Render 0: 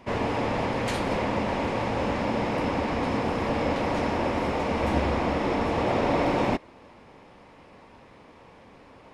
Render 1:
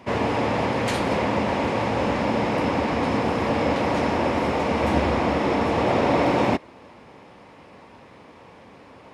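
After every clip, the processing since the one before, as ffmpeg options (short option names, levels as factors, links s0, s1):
-af "highpass=70,volume=1.58"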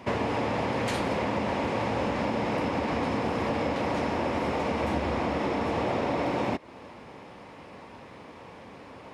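-af "acompressor=threshold=0.0501:ratio=6,volume=1.12"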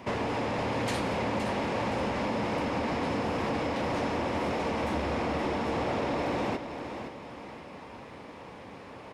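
-filter_complex "[0:a]acrossover=split=4000[s0][s1];[s0]asoftclip=type=tanh:threshold=0.0562[s2];[s2][s1]amix=inputs=2:normalize=0,aecho=1:1:519|1038|1557|2076|2595:0.355|0.145|0.0596|0.0245|0.01"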